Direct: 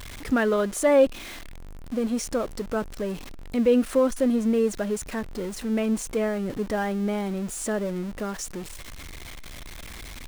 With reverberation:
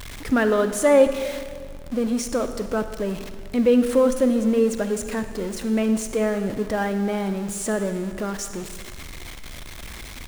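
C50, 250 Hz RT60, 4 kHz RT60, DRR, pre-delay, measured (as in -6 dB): 9.5 dB, 2.0 s, 1.6 s, 9.0 dB, 37 ms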